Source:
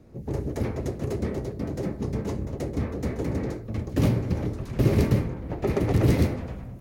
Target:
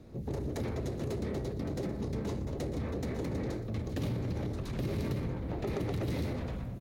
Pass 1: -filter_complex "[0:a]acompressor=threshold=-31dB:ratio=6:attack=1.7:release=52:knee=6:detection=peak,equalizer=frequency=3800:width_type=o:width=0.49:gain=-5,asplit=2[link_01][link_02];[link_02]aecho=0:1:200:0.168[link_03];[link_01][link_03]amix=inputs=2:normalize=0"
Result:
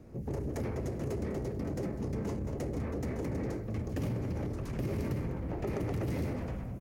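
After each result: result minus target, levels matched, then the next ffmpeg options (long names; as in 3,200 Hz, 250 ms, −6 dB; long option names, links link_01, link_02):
echo 81 ms late; 4,000 Hz band −6.0 dB
-filter_complex "[0:a]acompressor=threshold=-31dB:ratio=6:attack=1.7:release=52:knee=6:detection=peak,equalizer=frequency=3800:width_type=o:width=0.49:gain=-5,asplit=2[link_01][link_02];[link_02]aecho=0:1:119:0.168[link_03];[link_01][link_03]amix=inputs=2:normalize=0"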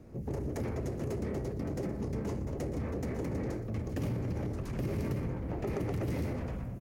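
4,000 Hz band −6.0 dB
-filter_complex "[0:a]acompressor=threshold=-31dB:ratio=6:attack=1.7:release=52:knee=6:detection=peak,equalizer=frequency=3800:width_type=o:width=0.49:gain=6.5,asplit=2[link_01][link_02];[link_02]aecho=0:1:119:0.168[link_03];[link_01][link_03]amix=inputs=2:normalize=0"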